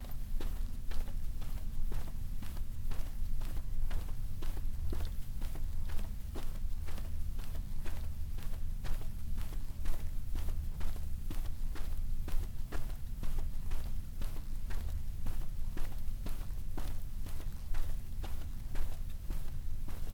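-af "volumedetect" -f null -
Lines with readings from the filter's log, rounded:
mean_volume: -31.8 dB
max_volume: -19.2 dB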